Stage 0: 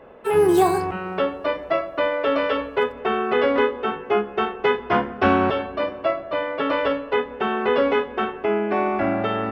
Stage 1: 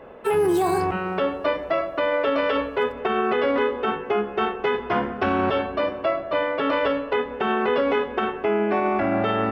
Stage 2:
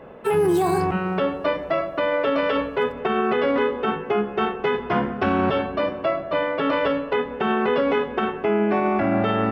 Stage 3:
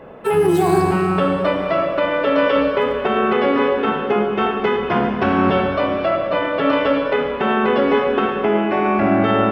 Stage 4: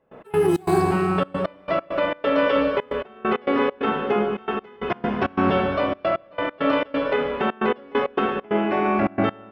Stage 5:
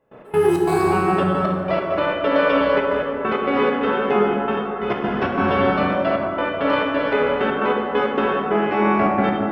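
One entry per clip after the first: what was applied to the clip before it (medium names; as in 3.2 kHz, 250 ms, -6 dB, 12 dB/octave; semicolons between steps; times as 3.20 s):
peak limiter -16 dBFS, peak gain reduction 10.5 dB; trim +2.5 dB
peaking EQ 160 Hz +7.5 dB 0.97 oct
reverberation RT60 2.7 s, pre-delay 25 ms, DRR 3 dB; trim +3 dB
trance gate ".x.xx.xxxxx.x." 134 bpm -24 dB; trim -3.5 dB
plate-style reverb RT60 3 s, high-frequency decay 0.4×, DRR -1 dB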